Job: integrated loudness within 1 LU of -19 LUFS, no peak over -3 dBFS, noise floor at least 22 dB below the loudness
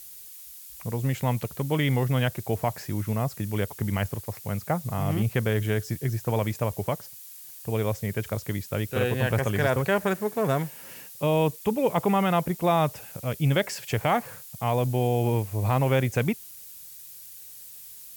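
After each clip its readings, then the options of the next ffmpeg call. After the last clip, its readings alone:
noise floor -45 dBFS; noise floor target -49 dBFS; loudness -27.0 LUFS; peak level -12.0 dBFS; loudness target -19.0 LUFS
-> -af "afftdn=nr=6:nf=-45"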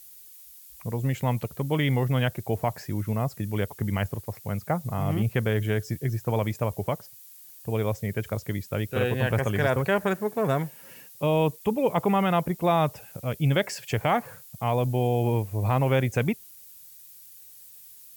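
noise floor -49 dBFS; loudness -27.0 LUFS; peak level -12.0 dBFS; loudness target -19.0 LUFS
-> -af "volume=2.51"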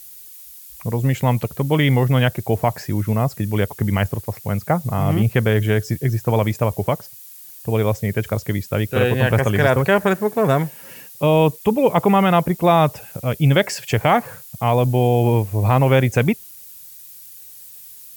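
loudness -19.0 LUFS; peak level -4.0 dBFS; noise floor -41 dBFS

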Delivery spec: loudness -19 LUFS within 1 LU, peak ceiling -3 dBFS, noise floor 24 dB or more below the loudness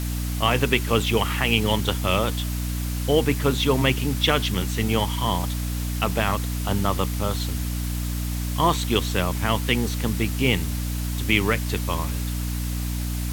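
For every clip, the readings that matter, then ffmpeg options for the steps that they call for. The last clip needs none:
hum 60 Hz; highest harmonic 300 Hz; hum level -24 dBFS; noise floor -27 dBFS; noise floor target -48 dBFS; loudness -23.5 LUFS; peak level -3.5 dBFS; loudness target -19.0 LUFS
-> -af "bandreject=f=60:t=h:w=6,bandreject=f=120:t=h:w=6,bandreject=f=180:t=h:w=6,bandreject=f=240:t=h:w=6,bandreject=f=300:t=h:w=6"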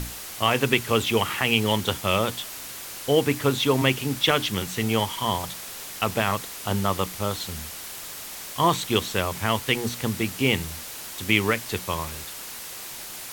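hum not found; noise floor -38 dBFS; noise floor target -49 dBFS
-> -af "afftdn=nr=11:nf=-38"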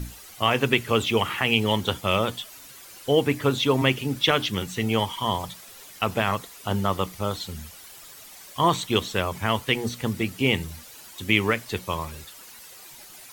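noise floor -46 dBFS; noise floor target -49 dBFS
-> -af "afftdn=nr=6:nf=-46"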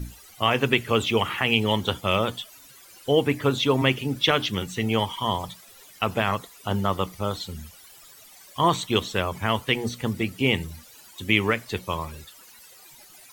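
noise floor -50 dBFS; loudness -24.5 LUFS; peak level -4.0 dBFS; loudness target -19.0 LUFS
-> -af "volume=1.88,alimiter=limit=0.708:level=0:latency=1"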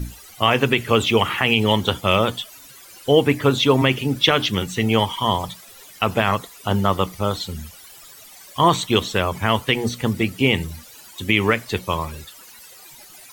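loudness -19.5 LUFS; peak level -3.0 dBFS; noise floor -44 dBFS

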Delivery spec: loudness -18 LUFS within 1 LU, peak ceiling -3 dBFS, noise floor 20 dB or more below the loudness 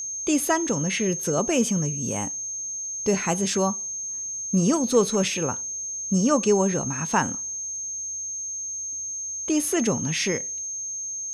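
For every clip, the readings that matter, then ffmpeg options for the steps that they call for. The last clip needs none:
steady tone 6.4 kHz; tone level -29 dBFS; loudness -24.5 LUFS; peak level -7.0 dBFS; loudness target -18.0 LUFS
-> -af "bandreject=f=6400:w=30"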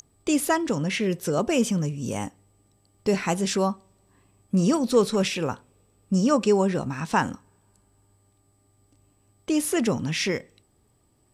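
steady tone not found; loudness -24.5 LUFS; peak level -7.5 dBFS; loudness target -18.0 LUFS
-> -af "volume=2.11,alimiter=limit=0.708:level=0:latency=1"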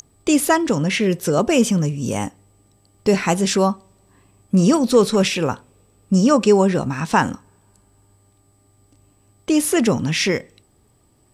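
loudness -18.5 LUFS; peak level -3.0 dBFS; noise floor -59 dBFS

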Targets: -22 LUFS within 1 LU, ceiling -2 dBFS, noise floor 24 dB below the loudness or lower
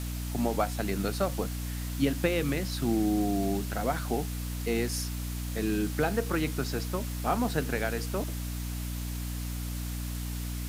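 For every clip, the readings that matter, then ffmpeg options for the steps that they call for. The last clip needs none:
hum 60 Hz; highest harmonic 300 Hz; hum level -32 dBFS; noise floor -35 dBFS; noise floor target -55 dBFS; loudness -31.0 LUFS; peak level -12.5 dBFS; loudness target -22.0 LUFS
-> -af "bandreject=f=60:t=h:w=4,bandreject=f=120:t=h:w=4,bandreject=f=180:t=h:w=4,bandreject=f=240:t=h:w=4,bandreject=f=300:t=h:w=4"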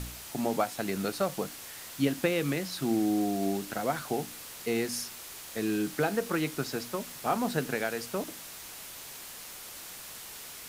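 hum not found; noise floor -45 dBFS; noise floor target -57 dBFS
-> -af "afftdn=nr=12:nf=-45"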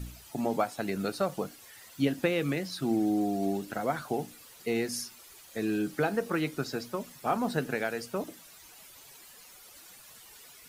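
noise floor -53 dBFS; noise floor target -56 dBFS
-> -af "afftdn=nr=6:nf=-53"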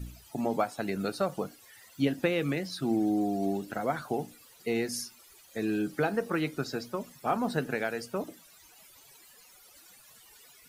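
noise floor -57 dBFS; loudness -32.0 LUFS; peak level -14.0 dBFS; loudness target -22.0 LUFS
-> -af "volume=3.16"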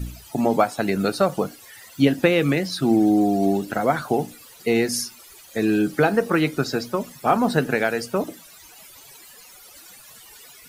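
loudness -22.0 LUFS; peak level -4.0 dBFS; noise floor -47 dBFS

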